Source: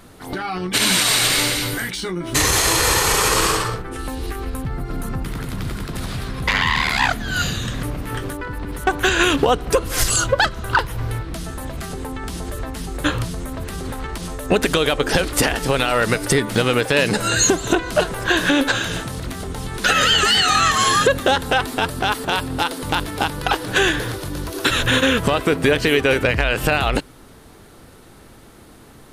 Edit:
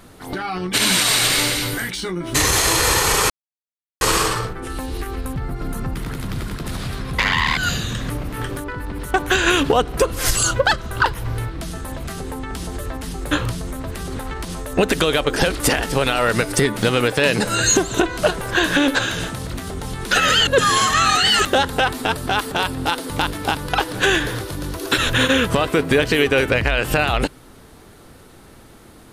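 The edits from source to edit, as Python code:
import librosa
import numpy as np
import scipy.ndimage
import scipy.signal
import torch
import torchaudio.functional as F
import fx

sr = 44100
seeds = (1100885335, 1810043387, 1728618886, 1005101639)

y = fx.edit(x, sr, fx.insert_silence(at_s=3.3, length_s=0.71),
    fx.cut(start_s=6.86, length_s=0.44),
    fx.reverse_span(start_s=20.2, length_s=0.98), tone=tone)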